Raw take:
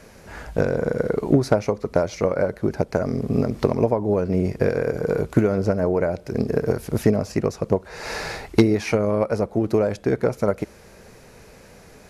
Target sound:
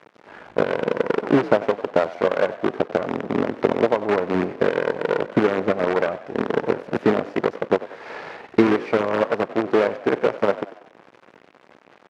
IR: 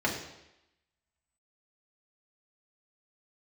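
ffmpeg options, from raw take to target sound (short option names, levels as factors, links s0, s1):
-filter_complex "[0:a]acrusher=bits=4:dc=4:mix=0:aa=0.000001,highpass=230,lowpass=2100,asplit=2[s0][s1];[s1]asplit=4[s2][s3][s4][s5];[s2]adelay=94,afreqshift=43,volume=0.158[s6];[s3]adelay=188,afreqshift=86,volume=0.0776[s7];[s4]adelay=282,afreqshift=129,volume=0.038[s8];[s5]adelay=376,afreqshift=172,volume=0.0186[s9];[s6][s7][s8][s9]amix=inputs=4:normalize=0[s10];[s0][s10]amix=inputs=2:normalize=0,volume=1.19"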